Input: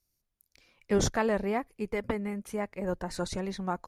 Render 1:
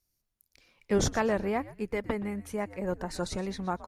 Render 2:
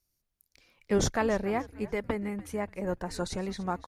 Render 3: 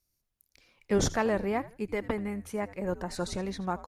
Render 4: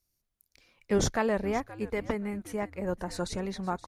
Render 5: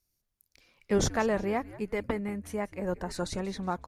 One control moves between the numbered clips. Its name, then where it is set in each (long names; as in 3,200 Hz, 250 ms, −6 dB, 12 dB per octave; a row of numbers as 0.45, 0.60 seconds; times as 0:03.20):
echo with shifted repeats, delay time: 122, 291, 81, 524, 184 milliseconds